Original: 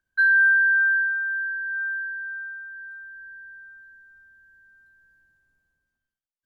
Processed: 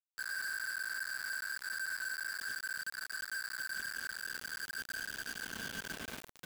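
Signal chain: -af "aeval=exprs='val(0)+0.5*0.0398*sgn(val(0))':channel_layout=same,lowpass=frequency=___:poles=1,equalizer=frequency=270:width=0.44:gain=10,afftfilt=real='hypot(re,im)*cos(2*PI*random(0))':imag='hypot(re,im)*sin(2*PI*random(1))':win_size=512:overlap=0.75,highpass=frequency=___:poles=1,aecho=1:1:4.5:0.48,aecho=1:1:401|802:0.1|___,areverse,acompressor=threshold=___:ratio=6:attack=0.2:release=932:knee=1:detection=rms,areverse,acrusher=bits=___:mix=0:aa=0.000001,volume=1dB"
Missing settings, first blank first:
1400, 150, 0.015, -37dB, 6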